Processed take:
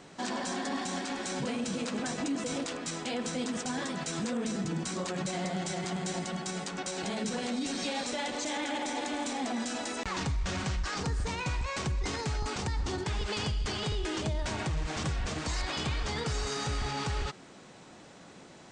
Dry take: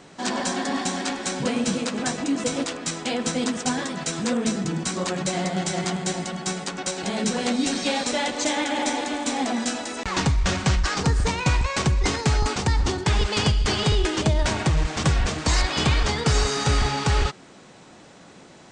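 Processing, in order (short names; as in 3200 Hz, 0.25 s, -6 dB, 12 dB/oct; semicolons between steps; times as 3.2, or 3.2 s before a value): limiter -21 dBFS, peak gain reduction 9.5 dB; gain -4 dB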